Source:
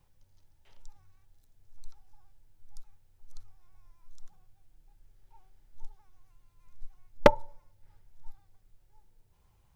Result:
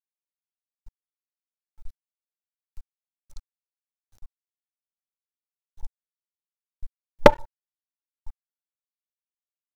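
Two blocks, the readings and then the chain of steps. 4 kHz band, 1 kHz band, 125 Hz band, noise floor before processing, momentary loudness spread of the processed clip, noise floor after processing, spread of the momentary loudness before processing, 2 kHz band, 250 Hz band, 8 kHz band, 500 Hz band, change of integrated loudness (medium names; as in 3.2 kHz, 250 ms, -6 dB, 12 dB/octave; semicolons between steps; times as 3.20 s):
+6.0 dB, +6.0 dB, +6.0 dB, -67 dBFS, 0 LU, under -85 dBFS, 12 LU, +6.0 dB, +6.0 dB, no reading, +6.0 dB, +7.0 dB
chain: crossover distortion -35.5 dBFS; trim +6.5 dB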